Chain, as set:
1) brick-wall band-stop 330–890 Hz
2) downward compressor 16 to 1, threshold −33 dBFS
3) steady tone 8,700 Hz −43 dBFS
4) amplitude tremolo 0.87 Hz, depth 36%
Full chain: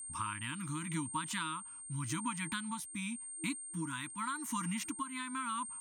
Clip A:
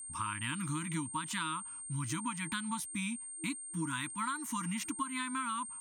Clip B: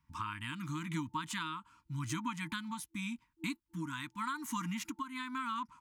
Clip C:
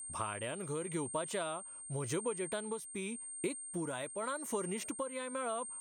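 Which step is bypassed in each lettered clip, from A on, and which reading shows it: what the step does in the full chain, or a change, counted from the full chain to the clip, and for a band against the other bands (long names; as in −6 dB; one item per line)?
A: 4, change in integrated loudness +1.5 LU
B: 3, 8 kHz band −9.0 dB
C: 1, 8 kHz band +2.5 dB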